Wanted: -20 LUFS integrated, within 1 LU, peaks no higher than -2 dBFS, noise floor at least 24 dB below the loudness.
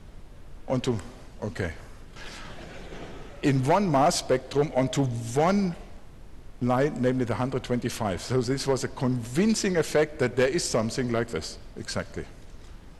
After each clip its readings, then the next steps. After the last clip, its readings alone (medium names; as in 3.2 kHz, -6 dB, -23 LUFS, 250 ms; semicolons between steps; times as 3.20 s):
clipped samples 0.5%; clipping level -15.0 dBFS; noise floor -46 dBFS; noise floor target -51 dBFS; loudness -26.5 LUFS; peak level -15.0 dBFS; loudness target -20.0 LUFS
-> clip repair -15 dBFS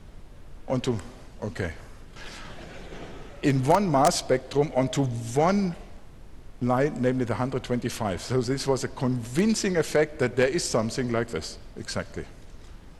clipped samples 0.0%; noise floor -46 dBFS; noise floor target -50 dBFS
-> noise print and reduce 6 dB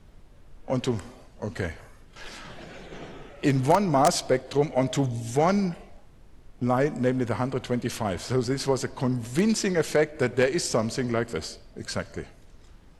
noise floor -52 dBFS; loudness -26.0 LUFS; peak level -6.0 dBFS; loudness target -20.0 LUFS
-> trim +6 dB; peak limiter -2 dBFS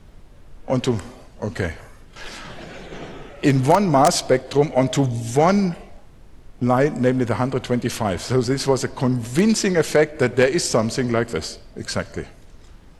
loudness -20.0 LUFS; peak level -2.0 dBFS; noise floor -46 dBFS